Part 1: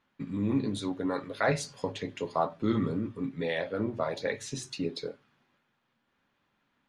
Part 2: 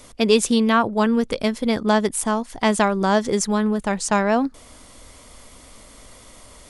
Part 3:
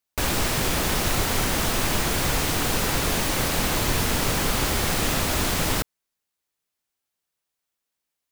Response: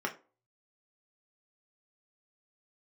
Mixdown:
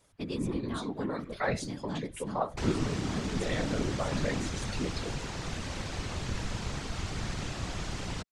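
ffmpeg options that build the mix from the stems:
-filter_complex "[0:a]volume=1.33,asplit=2[s0][s1];[1:a]asubboost=boost=10:cutoff=190,volume=0.168[s2];[2:a]lowpass=f=7400:w=0.5412,lowpass=f=7400:w=1.3066,acrossover=split=140[s3][s4];[s4]acompressor=threshold=0.0316:ratio=6[s5];[s3][s5]amix=inputs=2:normalize=0,adelay=2400,volume=0.841[s6];[s1]apad=whole_len=295435[s7];[s2][s7]sidechaincompress=threshold=0.0398:ratio=8:attack=12:release=128[s8];[s0][s8][s6]amix=inputs=3:normalize=0,afftfilt=real='hypot(re,im)*cos(2*PI*random(0))':imag='hypot(re,im)*sin(2*PI*random(1))':win_size=512:overlap=0.75"

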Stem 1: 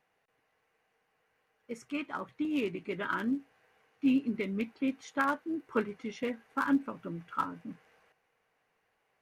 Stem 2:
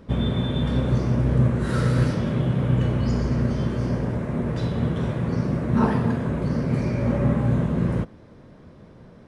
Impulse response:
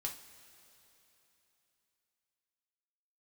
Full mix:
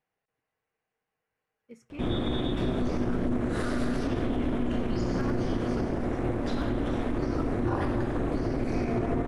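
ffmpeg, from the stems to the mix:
-filter_complex "[0:a]lowshelf=f=290:g=8,volume=0.237,asplit=2[s0][s1];[s1]volume=0.211[s2];[1:a]highpass=f=96:p=1,aeval=exprs='val(0)*sin(2*PI*120*n/s)':c=same,adelay=1900,volume=1.26[s3];[2:a]atrim=start_sample=2205[s4];[s2][s4]afir=irnorm=-1:irlink=0[s5];[s0][s3][s5]amix=inputs=3:normalize=0,alimiter=limit=0.119:level=0:latency=1:release=50"

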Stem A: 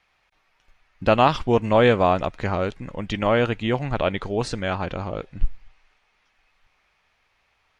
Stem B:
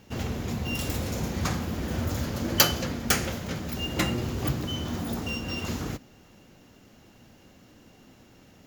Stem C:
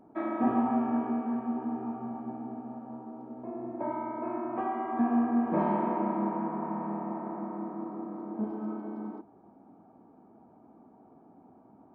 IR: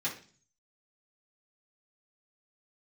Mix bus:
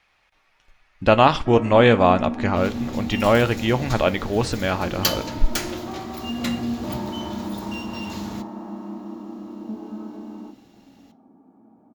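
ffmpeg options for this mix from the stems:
-filter_complex "[0:a]volume=1.26,asplit=2[s0][s1];[s1]volume=0.168[s2];[1:a]equalizer=f=4000:w=2:g=6.5,adelay=2450,volume=0.531,asplit=2[s3][s4];[s4]volume=0.251[s5];[2:a]equalizer=f=220:w=1.5:g=6,alimiter=limit=0.0841:level=0:latency=1,adelay=1300,volume=0.75,asplit=2[s6][s7];[s7]volume=0.398[s8];[3:a]atrim=start_sample=2205[s9];[s2][s5][s8]amix=inputs=3:normalize=0[s10];[s10][s9]afir=irnorm=-1:irlink=0[s11];[s0][s3][s6][s11]amix=inputs=4:normalize=0"

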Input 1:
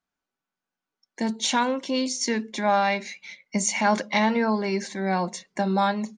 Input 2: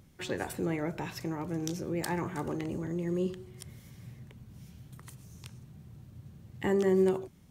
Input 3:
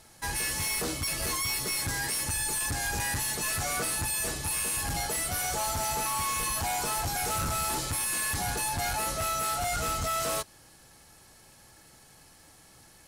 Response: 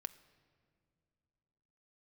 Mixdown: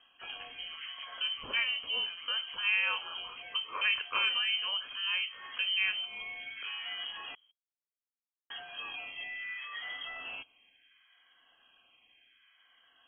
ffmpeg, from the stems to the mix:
-filter_complex "[0:a]flanger=delay=7.9:depth=9.3:regen=-77:speed=1.9:shape=triangular,volume=0.631,asplit=2[s0][s1];[1:a]acompressor=threshold=0.0178:ratio=2,volume=0.316[s2];[2:a]asoftclip=type=tanh:threshold=0.0299,asplit=2[s3][s4];[s4]afreqshift=0.69[s5];[s3][s5]amix=inputs=2:normalize=1,volume=0.631,asplit=3[s6][s7][s8];[s6]atrim=end=7.35,asetpts=PTS-STARTPTS,afade=t=out:st=7.346:d=0.004:c=hsin[s9];[s7]atrim=start=7.35:end=8.5,asetpts=PTS-STARTPTS,volume=0[s10];[s8]atrim=start=8.5,asetpts=PTS-STARTPTS,afade=t=in:d=0.004:c=hsin[s11];[s9][s10][s11]concat=n=3:v=0:a=1[s12];[s1]apad=whole_len=576655[s13];[s12][s13]sidechaincompress=threshold=0.00501:ratio=8:attack=9.6:release=126[s14];[s0][s2][s14]amix=inputs=3:normalize=0,lowpass=f=2800:t=q:w=0.5098,lowpass=f=2800:t=q:w=0.6013,lowpass=f=2800:t=q:w=0.9,lowpass=f=2800:t=q:w=2.563,afreqshift=-3300"

